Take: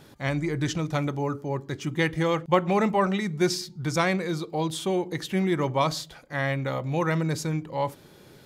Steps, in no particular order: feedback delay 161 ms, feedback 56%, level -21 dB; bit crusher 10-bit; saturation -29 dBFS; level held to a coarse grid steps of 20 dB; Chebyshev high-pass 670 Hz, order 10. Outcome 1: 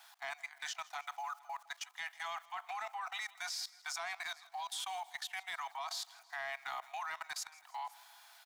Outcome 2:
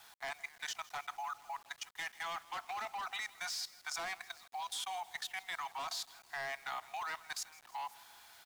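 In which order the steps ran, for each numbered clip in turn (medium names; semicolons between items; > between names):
bit crusher > Chebyshev high-pass > level held to a coarse grid > saturation > feedback delay; Chebyshev high-pass > saturation > level held to a coarse grid > feedback delay > bit crusher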